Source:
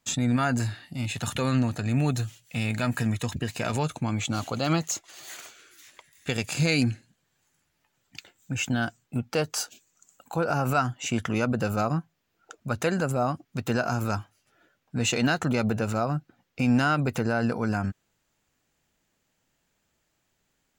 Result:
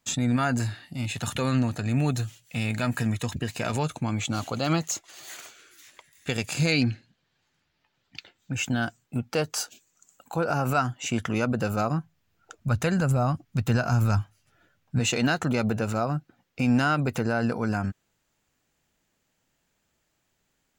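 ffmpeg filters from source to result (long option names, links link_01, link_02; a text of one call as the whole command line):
ffmpeg -i in.wav -filter_complex "[0:a]asettb=1/sr,asplit=3[link_01][link_02][link_03];[link_01]atrim=end=6.724[link_04];[link_02]atrim=start=6.72:end=8.54,asetpts=PTS-STARTPTS,afade=type=in:duration=0.004:curve=qsin,afade=type=out:start_time=1.816:duration=0.004:curve=qsin,highshelf=frequency=6200:width_type=q:width=1.5:gain=-12[link_05];[link_03]atrim=start=8.536[link_06];[link_04][link_05]acrossfade=duration=0.004:curve1=hsin:curve2=qsin[link_07];[link_07][link_06]acrossfade=duration=0.004:curve1=qsin:curve2=hsin,asplit=3[link_08][link_09][link_10];[link_08]afade=type=out:start_time=11.99:duration=0.02[link_11];[link_09]asubboost=boost=3.5:cutoff=160,afade=type=in:start_time=11.99:duration=0.02,afade=type=out:start_time=14.99:duration=0.02[link_12];[link_10]afade=type=in:start_time=14.99:duration=0.02[link_13];[link_11][link_12][link_13]amix=inputs=3:normalize=0" out.wav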